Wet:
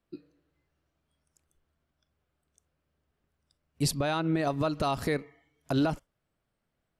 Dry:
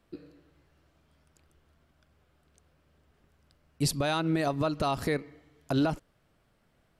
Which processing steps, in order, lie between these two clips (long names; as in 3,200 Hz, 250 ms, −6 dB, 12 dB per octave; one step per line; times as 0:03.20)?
0:03.94–0:04.47: low-pass filter 3,200 Hz 6 dB per octave
noise reduction from a noise print of the clip's start 12 dB